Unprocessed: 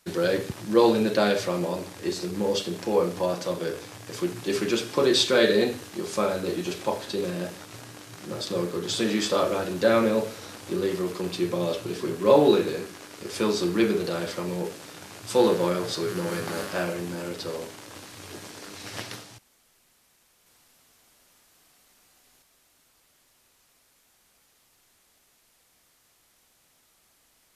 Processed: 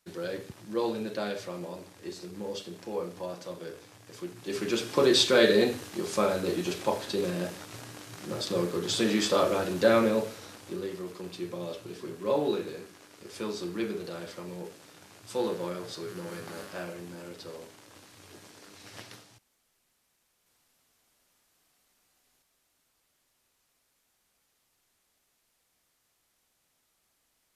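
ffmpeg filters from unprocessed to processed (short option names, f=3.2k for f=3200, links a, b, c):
-af "volume=-1dB,afade=t=in:st=4.37:d=0.61:silence=0.316228,afade=t=out:st=9.83:d=1.08:silence=0.354813"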